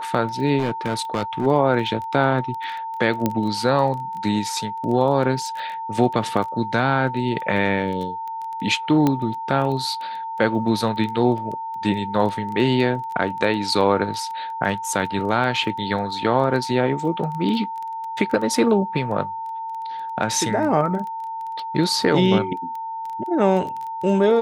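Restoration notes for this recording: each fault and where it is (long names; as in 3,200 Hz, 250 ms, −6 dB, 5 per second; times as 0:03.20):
surface crackle 13 per second −28 dBFS
whistle 900 Hz −27 dBFS
0:00.58–0:01.47: clipping −17 dBFS
0:03.26: click −7 dBFS
0:09.07: click −7 dBFS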